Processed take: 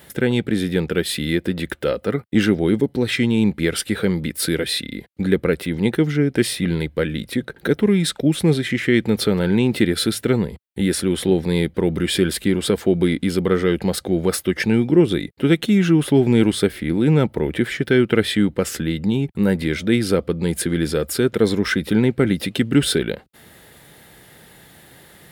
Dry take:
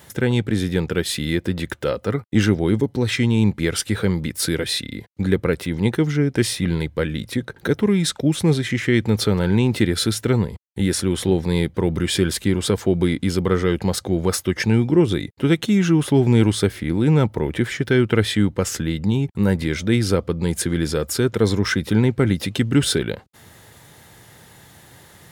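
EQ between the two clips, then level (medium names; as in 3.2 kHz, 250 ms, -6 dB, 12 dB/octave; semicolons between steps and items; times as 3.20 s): fifteen-band graphic EQ 100 Hz -11 dB, 1 kHz -6 dB, 6.3 kHz -8 dB; +2.5 dB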